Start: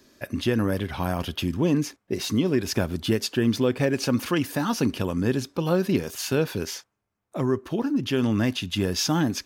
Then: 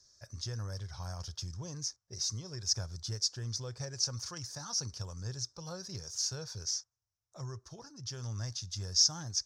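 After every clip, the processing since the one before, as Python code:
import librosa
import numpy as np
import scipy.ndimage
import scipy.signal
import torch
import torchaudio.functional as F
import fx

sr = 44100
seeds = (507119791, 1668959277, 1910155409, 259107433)

y = fx.curve_eq(x, sr, hz=(120.0, 260.0, 480.0, 780.0, 1400.0, 2800.0, 5600.0, 12000.0), db=(0, -26, -13, -10, -8, -20, 14, -17))
y = F.gain(torch.from_numpy(y), -8.5).numpy()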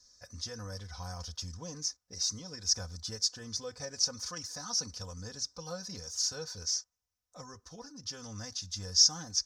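y = x + 0.89 * np.pad(x, (int(4.0 * sr / 1000.0), 0))[:len(x)]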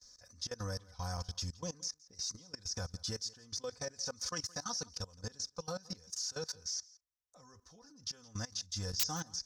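y = fx.level_steps(x, sr, step_db=21)
y = 10.0 ** (-28.5 / 20.0) * (np.abs((y / 10.0 ** (-28.5 / 20.0) + 3.0) % 4.0 - 2.0) - 1.0)
y = y + 10.0 ** (-22.5 / 20.0) * np.pad(y, (int(169 * sr / 1000.0), 0))[:len(y)]
y = F.gain(torch.from_numpy(y), 4.0).numpy()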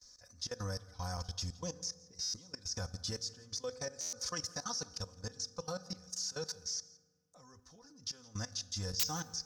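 y = fx.rev_fdn(x, sr, rt60_s=1.6, lf_ratio=1.4, hf_ratio=0.55, size_ms=12.0, drr_db=16.0)
y = fx.buffer_glitch(y, sr, at_s=(2.21, 4.0), block=512, repeats=10)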